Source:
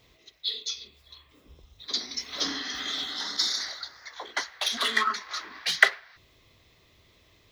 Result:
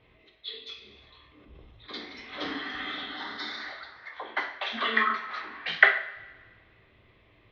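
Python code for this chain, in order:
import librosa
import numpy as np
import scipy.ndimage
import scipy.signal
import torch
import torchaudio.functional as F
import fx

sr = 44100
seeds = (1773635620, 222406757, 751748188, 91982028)

y = scipy.signal.sosfilt(scipy.signal.butter(4, 2800.0, 'lowpass', fs=sr, output='sos'), x)
y = fx.rev_double_slope(y, sr, seeds[0], early_s=0.52, late_s=1.7, knee_db=-18, drr_db=2.0)
y = fx.sustainer(y, sr, db_per_s=22.0, at=(0.82, 1.87))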